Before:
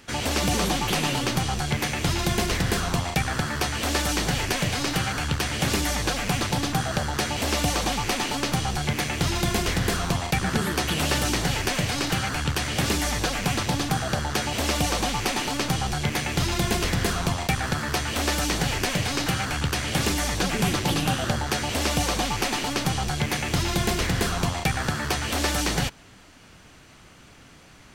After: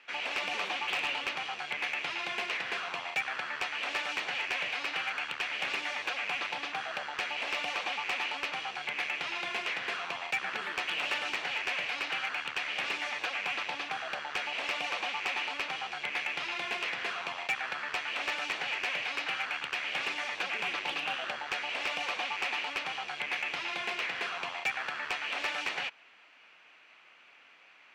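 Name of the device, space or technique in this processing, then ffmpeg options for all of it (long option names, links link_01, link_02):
megaphone: -af "highpass=700,lowpass=3000,equalizer=frequency=2500:width_type=o:width=0.57:gain=10,asoftclip=type=hard:threshold=-17.5dB,volume=-7dB"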